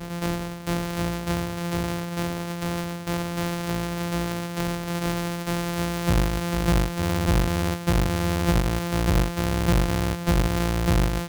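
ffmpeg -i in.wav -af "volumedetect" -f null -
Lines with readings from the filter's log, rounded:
mean_volume: -24.3 dB
max_volume: -13.7 dB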